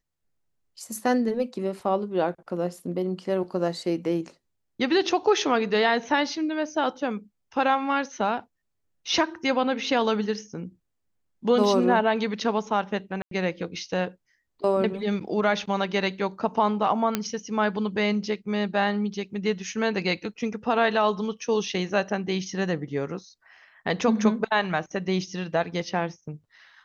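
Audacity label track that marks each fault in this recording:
13.220000	13.310000	dropout 93 ms
17.150000	17.150000	pop -8 dBFS

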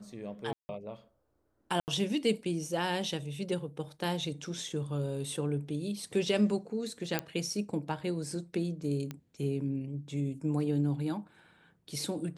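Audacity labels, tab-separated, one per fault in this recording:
0.530000	0.690000	dropout 160 ms
1.800000	1.880000	dropout 79 ms
7.190000	7.190000	pop -13 dBFS
9.110000	9.110000	pop -24 dBFS

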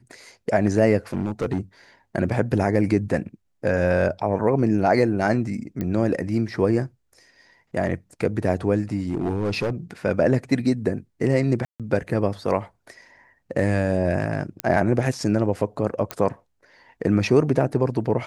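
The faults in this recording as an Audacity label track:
1.130000	1.590000	clipped -18.5 dBFS
5.810000	5.810000	pop -16 dBFS
9.090000	9.700000	clipped -19.5 dBFS
11.650000	11.800000	dropout 147 ms
14.600000	14.600000	pop -9 dBFS
16.110000	16.110000	pop -10 dBFS

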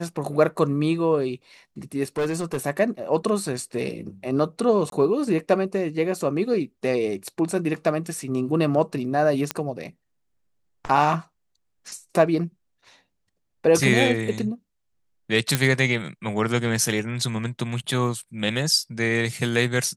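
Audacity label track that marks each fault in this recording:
2.180000	2.570000	clipped -20.5 dBFS
4.900000	4.920000	dropout 22 ms
9.510000	9.510000	pop -8 dBFS
15.550000	15.550000	pop -4 dBFS

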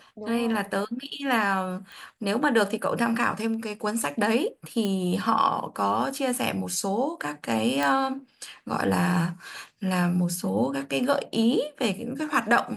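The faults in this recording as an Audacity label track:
1.920000	1.920000	pop
4.850000	4.850000	pop -15 dBFS
7.830000	7.830000	pop

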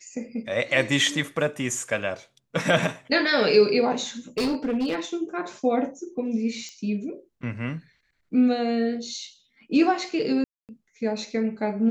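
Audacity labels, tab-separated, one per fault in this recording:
4.380000	4.990000	clipped -21 dBFS
6.690000	6.690000	pop -27 dBFS
10.440000	10.690000	dropout 248 ms

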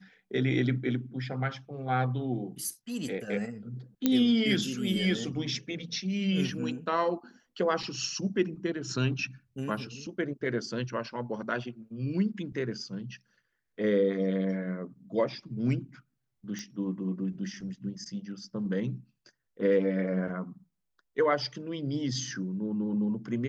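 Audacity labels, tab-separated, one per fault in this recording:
4.060000	4.060000	pop -11 dBFS
16.590000	16.590000	pop -25 dBFS

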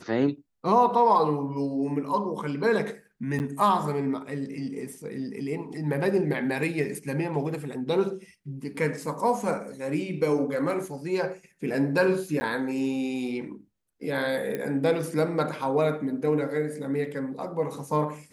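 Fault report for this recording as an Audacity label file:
3.390000	3.400000	dropout 9.6 ms
12.400000	12.410000	dropout 10 ms
14.550000	14.550000	pop -18 dBFS

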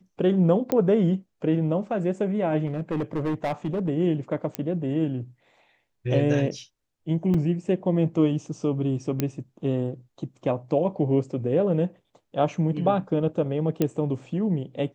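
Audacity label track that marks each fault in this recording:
0.720000	0.720000	pop -11 dBFS
2.660000	3.890000	clipped -22 dBFS
4.550000	4.550000	pop -12 dBFS
7.340000	7.340000	dropout 4.3 ms
9.200000	9.200000	pop -10 dBFS
13.820000	13.820000	pop -10 dBFS

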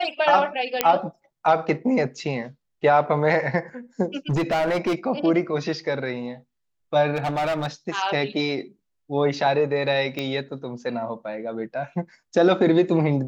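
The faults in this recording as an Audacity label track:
0.810000	0.810000	pop -2 dBFS
4.290000	4.950000	clipped -18.5 dBFS
7.150000	7.670000	clipped -20.5 dBFS
10.190000	10.190000	pop -14 dBFS

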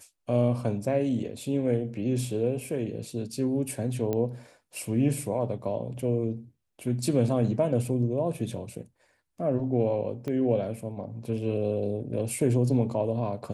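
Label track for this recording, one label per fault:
4.130000	4.130000	pop -17 dBFS
10.280000	10.280000	pop -22 dBFS

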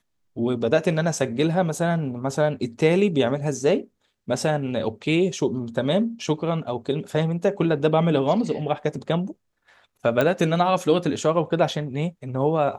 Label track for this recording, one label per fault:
10.210000	10.210000	pop -9 dBFS

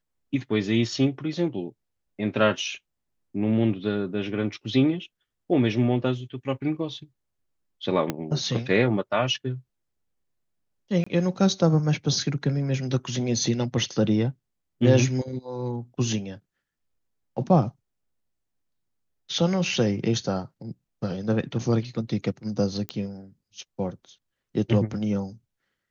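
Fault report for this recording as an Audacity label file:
8.100000	8.100000	pop -11 dBFS
11.040000	11.060000	dropout 25 ms
22.890000	22.890000	pop -15 dBFS

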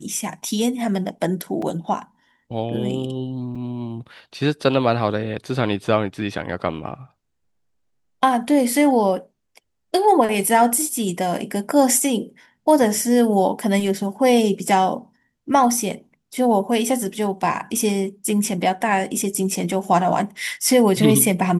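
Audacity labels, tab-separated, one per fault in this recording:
1.620000	1.620000	dropout 4.1 ms
3.550000	3.560000	dropout 5 ms

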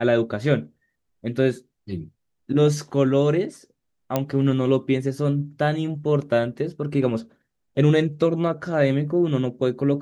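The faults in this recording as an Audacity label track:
4.160000	4.160000	pop -8 dBFS

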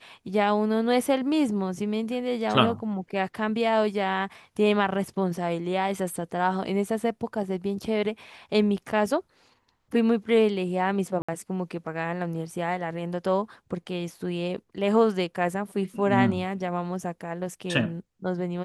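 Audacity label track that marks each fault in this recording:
11.220000	11.290000	dropout 65 ms

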